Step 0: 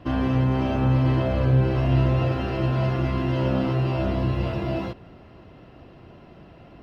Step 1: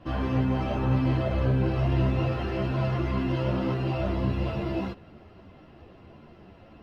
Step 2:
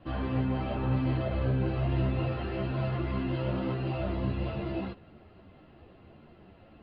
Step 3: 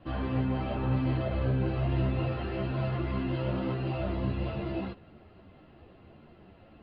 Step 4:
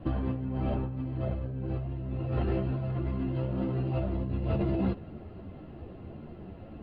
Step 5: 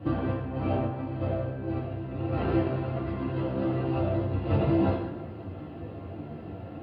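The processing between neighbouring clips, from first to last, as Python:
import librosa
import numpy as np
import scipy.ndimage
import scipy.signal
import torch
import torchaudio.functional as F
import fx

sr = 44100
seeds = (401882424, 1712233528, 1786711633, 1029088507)

y1 = fx.ensemble(x, sr)
y2 = scipy.signal.sosfilt(scipy.signal.butter(12, 4700.0, 'lowpass', fs=sr, output='sos'), y1)
y2 = fx.notch(y2, sr, hz=1000.0, q=27.0)
y2 = y2 * 10.0 ** (-4.0 / 20.0)
y3 = y2
y4 = fx.tilt_shelf(y3, sr, db=6.0, hz=770.0)
y4 = fx.over_compress(y4, sr, threshold_db=-31.0, ratio=-1.0)
y5 = scipy.signal.sosfilt(scipy.signal.butter(2, 96.0, 'highpass', fs=sr, output='sos'), y4)
y5 = fx.rev_fdn(y5, sr, rt60_s=1.1, lf_ratio=0.8, hf_ratio=0.75, size_ms=60.0, drr_db=-4.0)
y5 = y5 * 10.0 ** (1.0 / 20.0)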